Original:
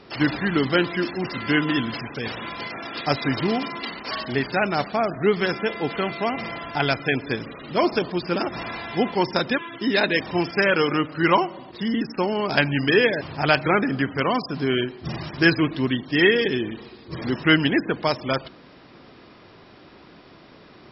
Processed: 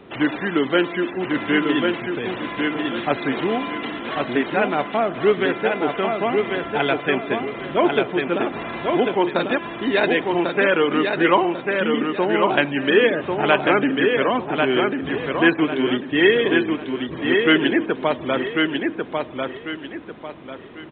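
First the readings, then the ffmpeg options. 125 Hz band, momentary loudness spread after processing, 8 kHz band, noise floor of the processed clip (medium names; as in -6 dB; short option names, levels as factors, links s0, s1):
-4.5 dB, 10 LU, no reading, -36 dBFS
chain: -filter_complex "[0:a]equalizer=f=290:w=0.56:g=5,acrossover=split=270[s0][s1];[s0]acompressor=threshold=0.0158:ratio=6[s2];[s2][s1]amix=inputs=2:normalize=0,aecho=1:1:1095|2190|3285|4380:0.631|0.202|0.0646|0.0207,aresample=8000,aresample=44100"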